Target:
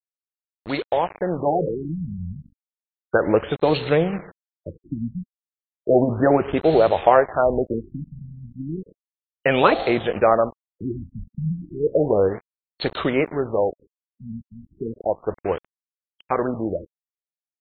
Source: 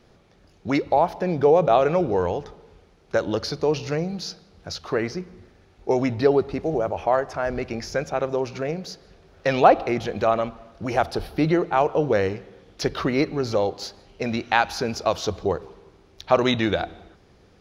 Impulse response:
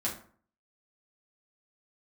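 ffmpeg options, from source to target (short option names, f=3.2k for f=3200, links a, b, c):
-filter_complex "[0:a]anlmdn=0.398,afftfilt=real='re*lt(hypot(re,im),1.12)':imag='im*lt(hypot(re,im),1.12)':win_size=1024:overlap=0.75,dynaudnorm=f=210:g=17:m=12.5dB,adynamicequalizer=threshold=0.0355:dfrequency=520:dqfactor=1.6:tfrequency=520:tqfactor=1.6:attack=5:release=100:ratio=0.375:range=1.5:mode=boostabove:tftype=bell,asplit=2[a][b];[b]adynamicsmooth=sensitivity=4:basefreq=1.2k,volume=-2.5dB[c];[a][c]amix=inputs=2:normalize=0,acrusher=bits=3:mix=0:aa=0.5,aeval=exprs='sgn(val(0))*max(abs(val(0))-0.0335,0)':c=same,aresample=22050,aresample=44100,bass=f=250:g=-3,treble=f=4k:g=12,afftfilt=real='re*lt(b*sr/1024,230*pow(4400/230,0.5+0.5*sin(2*PI*0.33*pts/sr)))':imag='im*lt(b*sr/1024,230*pow(4400/230,0.5+0.5*sin(2*PI*0.33*pts/sr)))':win_size=1024:overlap=0.75,volume=-6dB"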